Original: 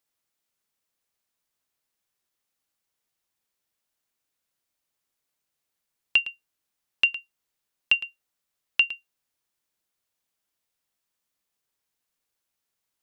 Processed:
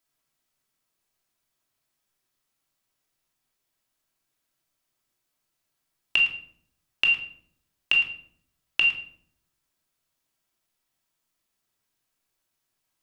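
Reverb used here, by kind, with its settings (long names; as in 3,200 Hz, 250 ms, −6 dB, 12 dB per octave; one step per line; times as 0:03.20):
rectangular room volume 1,000 cubic metres, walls furnished, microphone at 2.9 metres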